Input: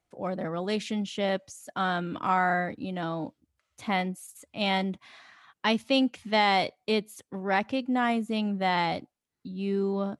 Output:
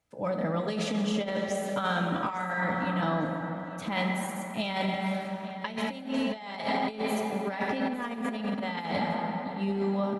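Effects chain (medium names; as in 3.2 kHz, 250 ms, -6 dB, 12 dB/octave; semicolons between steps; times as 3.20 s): comb of notches 360 Hz; plate-style reverb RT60 3.9 s, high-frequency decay 0.45×, DRR 2.5 dB; compressor with a negative ratio -29 dBFS, ratio -0.5; feedback delay 854 ms, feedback 28%, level -17 dB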